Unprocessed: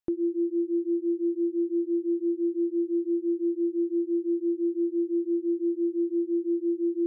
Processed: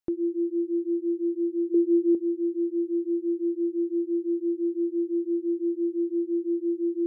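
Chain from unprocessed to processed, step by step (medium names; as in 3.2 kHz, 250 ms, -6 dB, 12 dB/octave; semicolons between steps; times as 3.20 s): 1.74–2.15 s: peaking EQ 410 Hz +13.5 dB 0.43 oct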